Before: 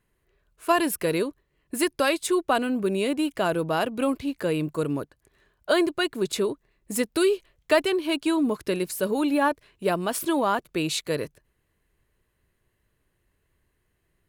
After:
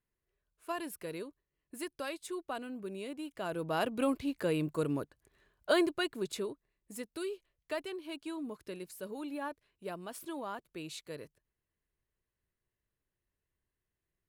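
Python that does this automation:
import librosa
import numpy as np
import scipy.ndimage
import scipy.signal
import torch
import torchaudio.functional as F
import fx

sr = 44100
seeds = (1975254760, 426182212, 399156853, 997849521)

y = fx.gain(x, sr, db=fx.line((3.29, -16.5), (3.85, -6.0), (5.79, -6.0), (6.96, -17.0)))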